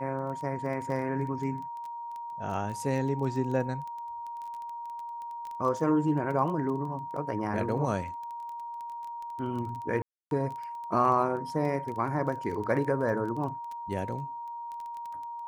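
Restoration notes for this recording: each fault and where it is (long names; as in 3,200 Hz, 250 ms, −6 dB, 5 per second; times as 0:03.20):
surface crackle 13 per second −35 dBFS
whistle 940 Hz −36 dBFS
0:10.02–0:10.31: drop-out 292 ms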